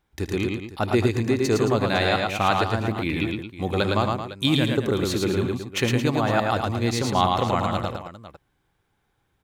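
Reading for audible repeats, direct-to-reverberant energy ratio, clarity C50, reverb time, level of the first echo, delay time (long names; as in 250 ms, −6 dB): 4, no reverb audible, no reverb audible, no reverb audible, −14.0 dB, 77 ms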